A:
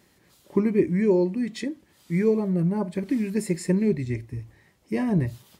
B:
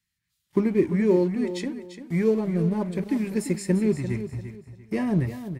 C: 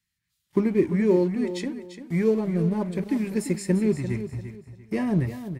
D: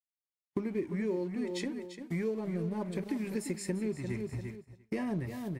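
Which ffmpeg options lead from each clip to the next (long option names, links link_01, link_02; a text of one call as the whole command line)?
ffmpeg -i in.wav -filter_complex "[0:a]agate=range=-17dB:threshold=-47dB:ratio=16:detection=peak,acrossover=split=170|1400|3700[link_01][link_02][link_03][link_04];[link_02]aeval=exprs='sgn(val(0))*max(abs(val(0))-0.00596,0)':channel_layout=same[link_05];[link_01][link_05][link_03][link_04]amix=inputs=4:normalize=0,aecho=1:1:344|688|1032:0.282|0.0789|0.0221" out.wav
ffmpeg -i in.wav -af anull out.wav
ffmpeg -i in.wav -af "agate=range=-33dB:threshold=-37dB:ratio=3:detection=peak,equalizer=frequency=88:width_type=o:width=2.7:gain=-5,acompressor=threshold=-32dB:ratio=4" out.wav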